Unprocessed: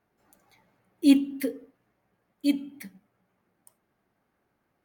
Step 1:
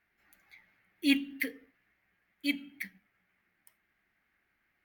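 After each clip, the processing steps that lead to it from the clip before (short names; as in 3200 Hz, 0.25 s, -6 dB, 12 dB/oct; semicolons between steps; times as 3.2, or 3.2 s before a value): graphic EQ 125/250/500/1000/2000/8000 Hz -10/-5/-11/-8/+12/-9 dB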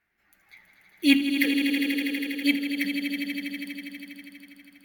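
AGC gain up to 7 dB; swelling echo 81 ms, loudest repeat 5, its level -9.5 dB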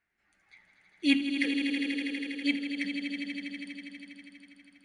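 brick-wall FIR low-pass 10000 Hz; gain -5.5 dB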